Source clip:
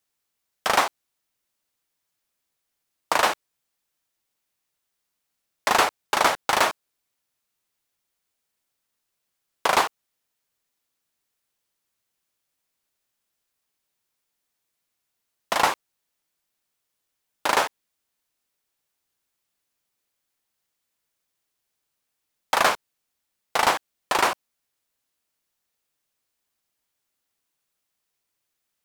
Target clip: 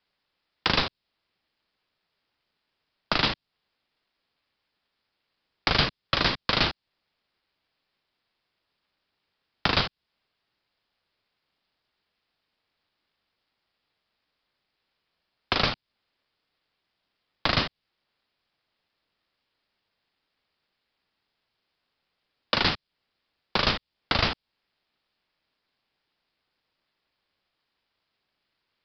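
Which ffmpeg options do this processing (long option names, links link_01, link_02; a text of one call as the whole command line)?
ffmpeg -i in.wav -filter_complex "[0:a]aeval=exprs='val(0)*sin(2*PI*290*n/s)':channel_layout=same,acrossover=split=220|3000[link_01][link_02][link_03];[link_02]acompressor=threshold=-36dB:ratio=6[link_04];[link_01][link_04][link_03]amix=inputs=3:normalize=0,aresample=11025,aresample=44100,volume=9dB" out.wav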